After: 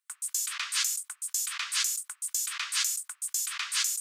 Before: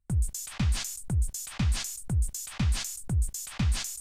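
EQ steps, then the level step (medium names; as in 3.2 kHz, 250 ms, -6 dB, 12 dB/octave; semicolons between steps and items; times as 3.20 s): steep high-pass 1.1 kHz 48 dB/octave; +7.0 dB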